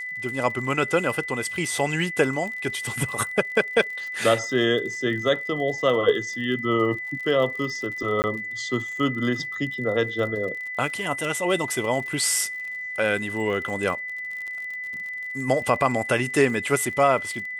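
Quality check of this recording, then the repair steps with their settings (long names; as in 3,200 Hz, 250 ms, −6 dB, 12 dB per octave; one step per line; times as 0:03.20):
surface crackle 50 per second −33 dBFS
whistle 2,000 Hz −30 dBFS
0:08.22–0:08.24: drop-out 19 ms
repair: click removal
notch filter 2,000 Hz, Q 30
repair the gap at 0:08.22, 19 ms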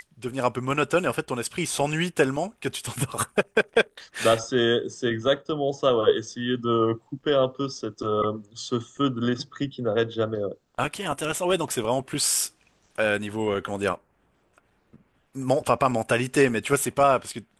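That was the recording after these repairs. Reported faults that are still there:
none of them is left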